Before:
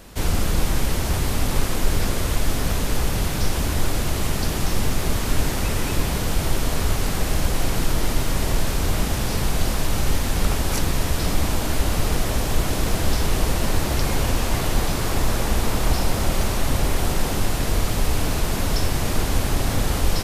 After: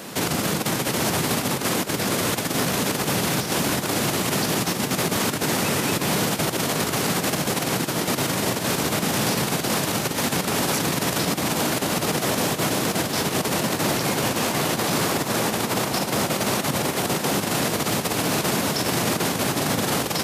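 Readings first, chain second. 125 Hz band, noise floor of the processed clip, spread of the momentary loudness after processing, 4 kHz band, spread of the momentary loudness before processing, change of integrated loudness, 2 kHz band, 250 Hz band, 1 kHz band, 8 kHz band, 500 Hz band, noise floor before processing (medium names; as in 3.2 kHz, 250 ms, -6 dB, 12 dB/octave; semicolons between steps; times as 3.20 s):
-4.5 dB, -29 dBFS, 1 LU, +4.0 dB, 1 LU, +1.5 dB, +4.0 dB, +3.0 dB, +3.5 dB, +4.0 dB, +3.5 dB, -24 dBFS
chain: compressor with a negative ratio -21 dBFS, ratio -1; high-pass 140 Hz 24 dB/octave; peak limiter -21 dBFS, peak gain reduction 10.5 dB; trim +8 dB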